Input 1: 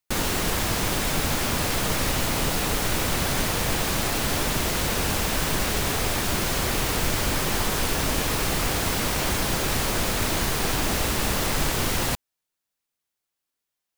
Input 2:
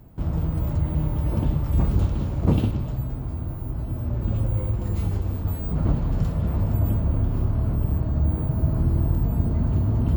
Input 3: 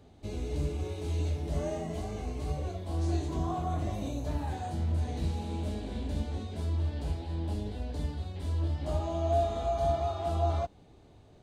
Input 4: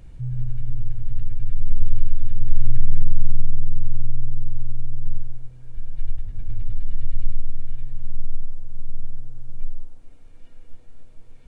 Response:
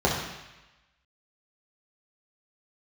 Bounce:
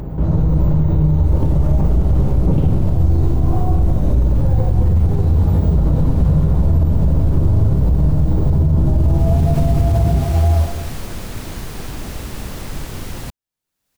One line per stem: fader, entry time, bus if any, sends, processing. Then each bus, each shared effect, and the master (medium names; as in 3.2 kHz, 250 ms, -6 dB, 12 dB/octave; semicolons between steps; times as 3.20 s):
8.82 s -22.5 dB -> 9.56 s -9.5 dB, 1.15 s, no send, none
-2.0 dB, 0.00 s, send -18.5 dB, tone controls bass -6 dB, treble -12 dB; level flattener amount 50%
-10.0 dB, 0.00 s, send -5 dB, none
-8.0 dB, 0.00 s, no send, compression, threshold -17 dBFS, peak gain reduction 12.5 dB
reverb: on, RT60 1.0 s, pre-delay 3 ms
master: upward compressor, threshold -36 dBFS; bass shelf 310 Hz +10.5 dB; peak limiter -6.5 dBFS, peak gain reduction 9 dB